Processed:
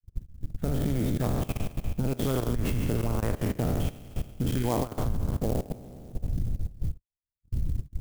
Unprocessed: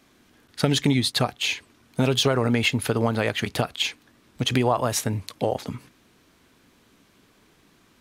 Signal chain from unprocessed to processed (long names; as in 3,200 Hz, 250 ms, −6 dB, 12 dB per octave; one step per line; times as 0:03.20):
peak hold with a decay on every bin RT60 2.46 s
wind on the microphone 98 Hz −32 dBFS
mains-hum notches 50/100/150/200 Hz
noise gate −33 dBFS, range −58 dB
spectral tilt −4 dB per octave
harmonic and percussive parts rebalanced harmonic −14 dB
low-shelf EQ 230 Hz +5 dB
output level in coarse steps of 18 dB
downsampling to 8,000 Hz
converter with an unsteady clock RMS 0.056 ms
level −8 dB